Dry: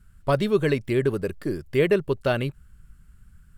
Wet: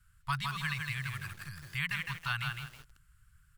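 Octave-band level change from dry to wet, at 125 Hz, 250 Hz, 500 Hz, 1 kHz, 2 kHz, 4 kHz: -10.0 dB, -20.5 dB, under -40 dB, -6.0 dB, -2.0 dB, -2.0 dB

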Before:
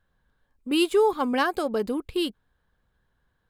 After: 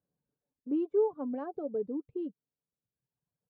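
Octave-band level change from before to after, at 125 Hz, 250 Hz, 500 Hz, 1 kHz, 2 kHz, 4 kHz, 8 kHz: no reading, -7.5 dB, -7.5 dB, -16.5 dB, under -25 dB, under -40 dB, under -35 dB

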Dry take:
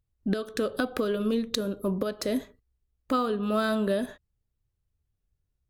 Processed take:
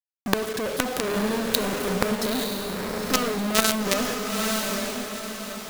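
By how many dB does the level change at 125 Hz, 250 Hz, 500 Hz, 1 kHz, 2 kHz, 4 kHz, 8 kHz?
+3.5 dB, +2.0 dB, +2.5 dB, +6.0 dB, +9.0 dB, +11.0 dB, +16.5 dB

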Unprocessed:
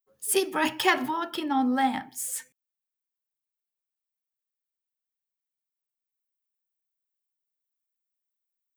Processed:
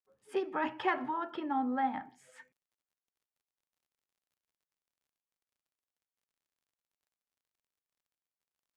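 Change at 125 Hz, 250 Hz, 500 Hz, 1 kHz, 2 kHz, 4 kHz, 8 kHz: no reading, -8.5 dB, -7.5 dB, -6.0 dB, -10.5 dB, -17.5 dB, under -30 dB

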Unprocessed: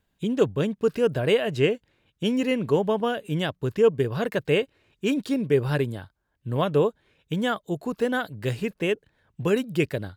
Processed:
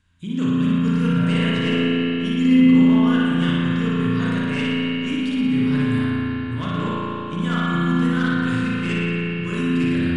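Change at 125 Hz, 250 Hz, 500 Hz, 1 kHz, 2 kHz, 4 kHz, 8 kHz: +7.5 dB, +10.5 dB, -6.0 dB, +4.0 dB, +6.0 dB, +5.5 dB, no reading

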